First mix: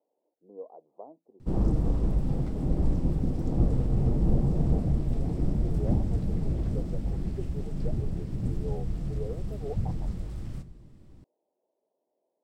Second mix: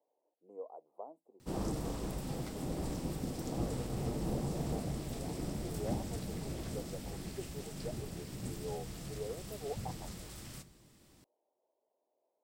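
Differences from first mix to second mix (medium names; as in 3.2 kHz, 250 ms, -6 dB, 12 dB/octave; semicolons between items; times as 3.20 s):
speech: remove distance through air 350 m; master: add tilt EQ +4 dB/octave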